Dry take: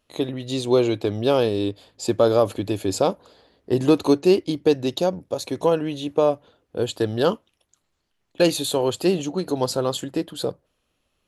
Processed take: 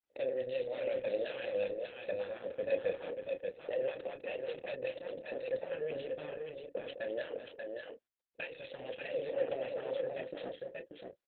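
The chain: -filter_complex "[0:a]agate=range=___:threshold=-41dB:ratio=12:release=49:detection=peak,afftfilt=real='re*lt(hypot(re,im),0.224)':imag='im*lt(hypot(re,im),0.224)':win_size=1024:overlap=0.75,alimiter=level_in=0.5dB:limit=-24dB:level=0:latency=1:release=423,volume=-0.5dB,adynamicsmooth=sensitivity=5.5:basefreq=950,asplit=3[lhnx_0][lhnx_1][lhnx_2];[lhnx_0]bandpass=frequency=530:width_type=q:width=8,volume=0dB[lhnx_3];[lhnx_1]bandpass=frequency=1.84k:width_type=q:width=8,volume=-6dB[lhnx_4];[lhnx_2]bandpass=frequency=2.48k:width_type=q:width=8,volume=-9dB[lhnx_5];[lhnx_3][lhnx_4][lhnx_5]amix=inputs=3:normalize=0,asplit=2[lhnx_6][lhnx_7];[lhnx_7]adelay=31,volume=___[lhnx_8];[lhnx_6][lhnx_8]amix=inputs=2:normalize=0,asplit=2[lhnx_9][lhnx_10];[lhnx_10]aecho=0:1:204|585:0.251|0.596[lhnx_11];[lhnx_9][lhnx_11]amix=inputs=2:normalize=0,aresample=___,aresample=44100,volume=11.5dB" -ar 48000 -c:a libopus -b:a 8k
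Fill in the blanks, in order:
-26dB, -8dB, 11025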